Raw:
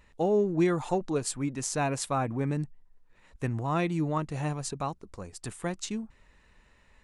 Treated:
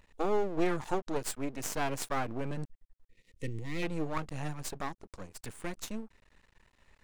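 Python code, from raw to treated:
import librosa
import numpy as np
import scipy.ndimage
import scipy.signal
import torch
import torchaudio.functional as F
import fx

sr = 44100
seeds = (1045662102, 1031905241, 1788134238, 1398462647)

y = np.maximum(x, 0.0)
y = fx.spec_box(y, sr, start_s=3.08, length_s=0.74, low_hz=540.0, high_hz=1800.0, gain_db=-18)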